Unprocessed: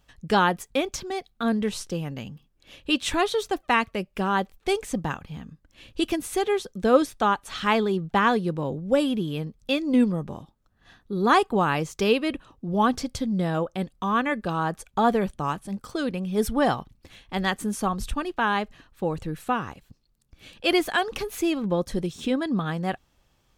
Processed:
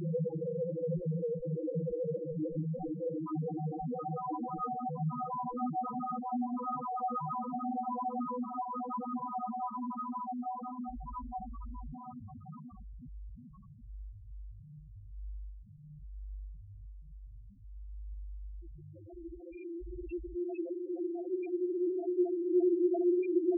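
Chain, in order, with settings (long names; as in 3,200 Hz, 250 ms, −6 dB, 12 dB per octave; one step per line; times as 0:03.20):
mains hum 50 Hz, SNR 18 dB
extreme stretch with random phases 15×, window 1.00 s, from 0:19.05
spectral peaks only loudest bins 2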